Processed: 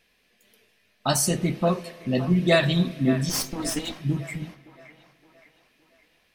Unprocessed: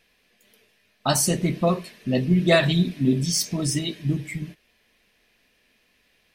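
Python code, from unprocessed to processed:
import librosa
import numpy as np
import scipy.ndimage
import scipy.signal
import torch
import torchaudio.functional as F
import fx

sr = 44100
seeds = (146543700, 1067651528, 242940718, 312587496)

y = fx.lower_of_two(x, sr, delay_ms=3.8, at=(3.29, 3.98))
y = fx.echo_wet_bandpass(y, sr, ms=567, feedback_pct=46, hz=1100.0, wet_db=-11)
y = fx.rev_spring(y, sr, rt60_s=2.6, pass_ms=(37, 42), chirp_ms=75, drr_db=18.5)
y = F.gain(torch.from_numpy(y), -1.5).numpy()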